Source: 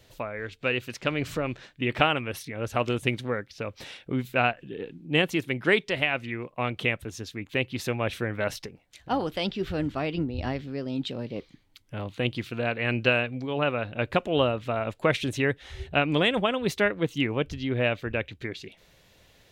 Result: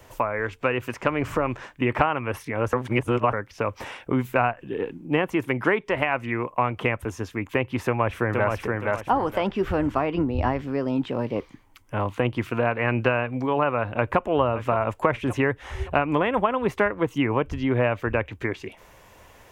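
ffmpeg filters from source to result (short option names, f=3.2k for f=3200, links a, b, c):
-filter_complex "[0:a]asplit=2[a][b];[b]afade=t=in:st=7.86:d=0.01,afade=t=out:st=8.53:d=0.01,aecho=0:1:470|940|1410:0.595662|0.148916|0.0372289[c];[a][c]amix=inputs=2:normalize=0,asplit=2[d][e];[e]afade=t=in:st=13.87:d=0.01,afade=t=out:st=14.28:d=0.01,aecho=0:1:570|1140|1710:0.211349|0.0739721|0.0258902[f];[d][f]amix=inputs=2:normalize=0,asplit=3[g][h][i];[g]atrim=end=2.732[j];[h]atrim=start=2.728:end=3.332,asetpts=PTS-STARTPTS,areverse[k];[i]atrim=start=3.328[l];[j][k]acrossfade=d=0.004:c1=hsin:c2=hsin[m];[m][l]acrossfade=d=0.004:c1=hsin:c2=hsin,acrossover=split=2800[n][o];[o]acompressor=threshold=-48dB:ratio=4:attack=1:release=60[p];[n][p]amix=inputs=2:normalize=0,equalizer=f=160:t=o:w=0.67:g=-6,equalizer=f=1k:t=o:w=0.67:g=10,equalizer=f=4k:t=o:w=0.67:g=-12,acrossover=split=120[q][r];[r]acompressor=threshold=-28dB:ratio=3[s];[q][s]amix=inputs=2:normalize=0,volume=8dB"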